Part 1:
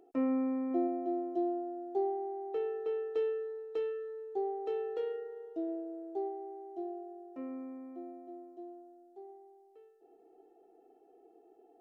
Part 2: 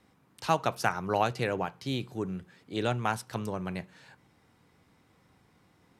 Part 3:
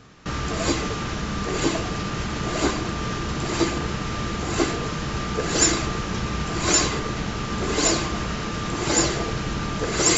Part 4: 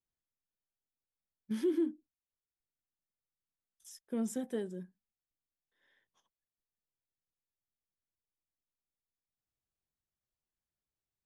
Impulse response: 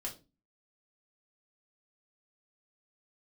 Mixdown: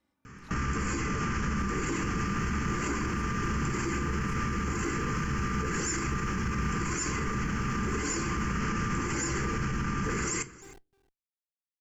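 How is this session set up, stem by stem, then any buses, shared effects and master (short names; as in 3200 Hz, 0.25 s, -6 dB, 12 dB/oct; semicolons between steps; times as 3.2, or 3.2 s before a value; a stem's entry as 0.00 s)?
-14.0 dB, 1.45 s, send -19.5 dB, echo send -18.5 dB, Schmitt trigger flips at -47 dBFS
-15.0 dB, 0.00 s, no send, no echo send, comb 3.4 ms, depth 72%; compressor, threshold -33 dBFS, peak gain reduction 14 dB; attack slew limiter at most 230 dB/s
+1.5 dB, 0.25 s, send -8 dB, echo send -21.5 dB, limiter -19 dBFS, peak gain reduction 14 dB; fixed phaser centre 1600 Hz, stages 4
-13.5 dB, 0.00 s, no send, no echo send, dry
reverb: on, RT60 0.30 s, pre-delay 4 ms
echo: echo 0.309 s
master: limiter -22 dBFS, peak gain reduction 7.5 dB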